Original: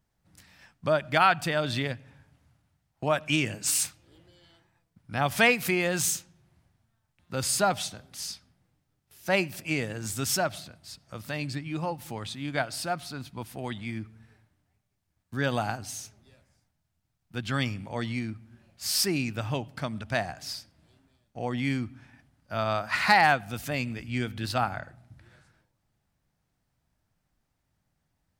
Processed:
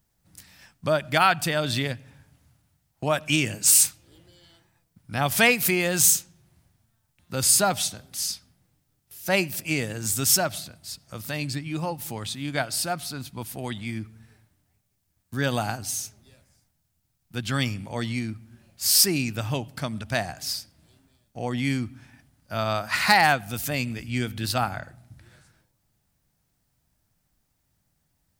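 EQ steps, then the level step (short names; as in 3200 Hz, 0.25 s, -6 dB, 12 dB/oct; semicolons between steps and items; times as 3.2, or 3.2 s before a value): low shelf 450 Hz +3.5 dB; high shelf 3900 Hz +9.5 dB; high shelf 11000 Hz +5 dB; 0.0 dB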